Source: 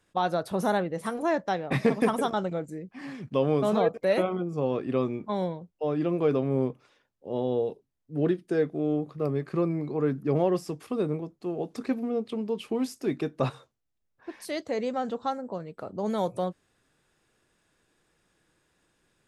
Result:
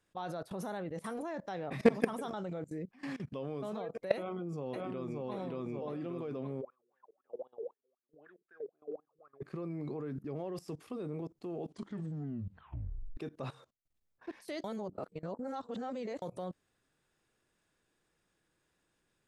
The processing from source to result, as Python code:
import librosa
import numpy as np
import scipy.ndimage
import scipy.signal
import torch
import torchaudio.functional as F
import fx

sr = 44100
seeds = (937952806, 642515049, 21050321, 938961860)

y = fx.echo_throw(x, sr, start_s=4.15, length_s=1.16, ms=580, feedback_pct=40, wet_db=-0.5)
y = fx.wah_lfo(y, sr, hz=3.9, low_hz=400.0, high_hz=1700.0, q=16.0, at=(6.6, 9.41), fade=0.02)
y = fx.edit(y, sr, fx.tape_stop(start_s=11.6, length_s=1.57),
    fx.reverse_span(start_s=14.64, length_s=1.58), tone=tone)
y = fx.level_steps(y, sr, step_db=20)
y = y * librosa.db_to_amplitude(1.0)